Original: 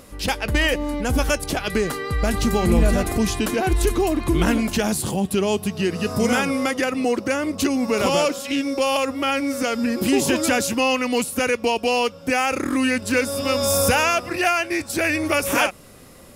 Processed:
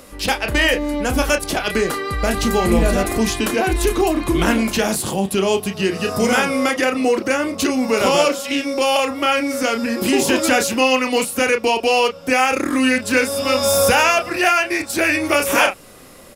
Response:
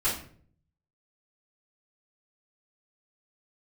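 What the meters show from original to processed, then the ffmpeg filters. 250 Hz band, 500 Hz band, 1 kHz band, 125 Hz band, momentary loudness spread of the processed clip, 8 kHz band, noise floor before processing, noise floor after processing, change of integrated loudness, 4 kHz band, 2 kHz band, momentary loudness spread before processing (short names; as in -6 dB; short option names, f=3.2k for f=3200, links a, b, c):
+2.0 dB, +4.0 dB, +4.5 dB, -1.0 dB, 5 LU, +3.0 dB, -42 dBFS, -38 dBFS, +3.5 dB, +4.5 dB, +5.0 dB, 5 LU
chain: -filter_complex "[0:a]equalizer=f=92:w=0.45:g=-6.5,acrossover=split=170|4600[a][b][c];[b]asplit=2[d][e];[e]adelay=31,volume=-6dB[f];[d][f]amix=inputs=2:normalize=0[g];[c]asoftclip=type=tanh:threshold=-19.5dB[h];[a][g][h]amix=inputs=3:normalize=0,volume=4dB"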